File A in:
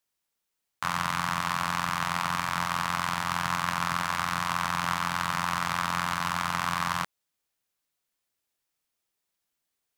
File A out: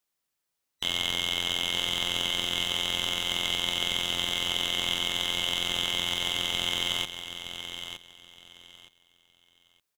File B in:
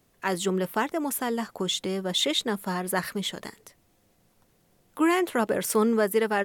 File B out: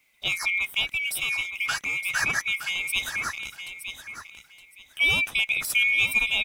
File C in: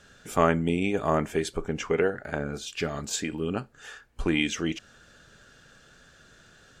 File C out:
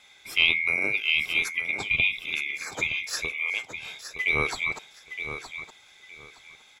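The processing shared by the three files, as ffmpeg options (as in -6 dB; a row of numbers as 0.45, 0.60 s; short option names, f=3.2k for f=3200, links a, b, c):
-af "afftfilt=real='real(if(lt(b,920),b+92*(1-2*mod(floor(b/92),2)),b),0)':imag='imag(if(lt(b,920),b+92*(1-2*mod(floor(b/92),2)),b),0)':win_size=2048:overlap=0.75,adynamicequalizer=threshold=0.00282:dfrequency=4300:dqfactor=6.4:tfrequency=4300:tqfactor=6.4:attack=5:release=100:ratio=0.375:range=2:mode=cutabove:tftype=bell,aecho=1:1:917|1834|2751:0.335|0.0737|0.0162"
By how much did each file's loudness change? +1.5, +2.5, +3.0 LU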